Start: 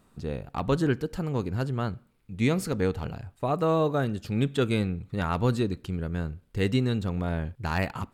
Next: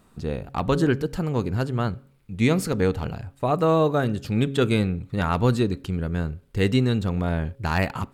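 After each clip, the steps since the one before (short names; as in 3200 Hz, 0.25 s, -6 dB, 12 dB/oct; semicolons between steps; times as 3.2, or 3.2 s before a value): de-hum 137.5 Hz, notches 4; gain +4.5 dB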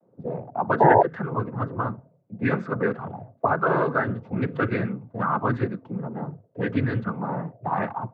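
noise vocoder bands 16; painted sound noise, 0.8–1.03, 320–970 Hz -13 dBFS; envelope low-pass 530–1700 Hz up, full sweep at -17.5 dBFS; gain -4 dB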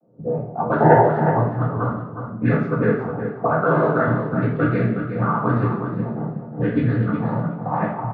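feedback echo 0.365 s, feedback 17%, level -7.5 dB; reverb RT60 0.70 s, pre-delay 3 ms, DRR -4 dB; mismatched tape noise reduction decoder only; gain -12 dB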